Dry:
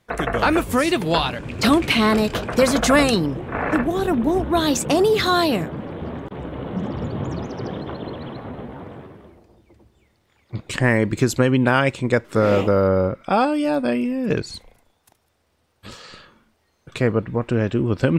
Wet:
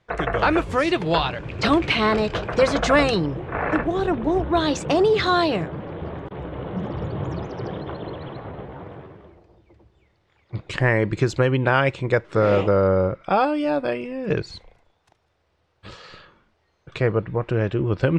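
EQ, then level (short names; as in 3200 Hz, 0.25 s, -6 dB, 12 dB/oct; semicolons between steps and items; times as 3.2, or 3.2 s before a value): air absorption 120 m; bell 240 Hz -13 dB 0.27 oct; 0.0 dB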